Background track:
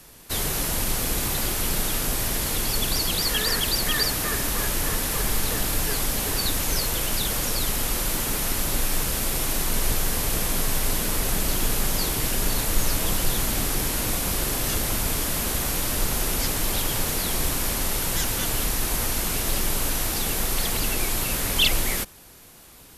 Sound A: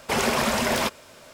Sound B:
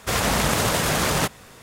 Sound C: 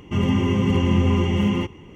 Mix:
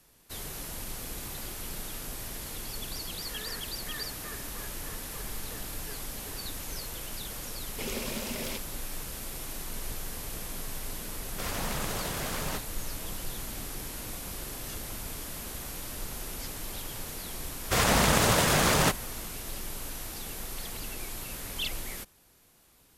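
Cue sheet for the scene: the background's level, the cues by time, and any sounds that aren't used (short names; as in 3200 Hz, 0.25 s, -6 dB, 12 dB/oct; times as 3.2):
background track -13.5 dB
7.69 add A -11 dB + band shelf 1100 Hz -10.5 dB
11.31 add B -13.5 dB
17.64 add B -2 dB
not used: C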